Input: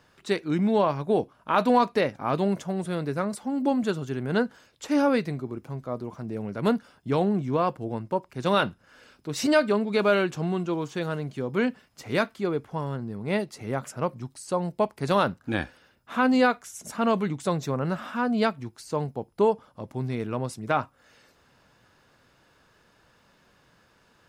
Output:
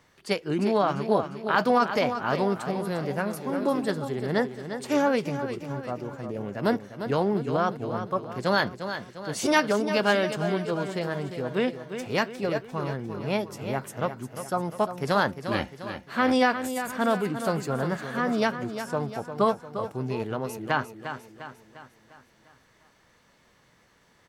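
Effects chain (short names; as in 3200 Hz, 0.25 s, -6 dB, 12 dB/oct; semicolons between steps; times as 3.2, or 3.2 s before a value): feedback echo 0.351 s, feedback 50%, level -9.5 dB; formant shift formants +3 st; gain -1 dB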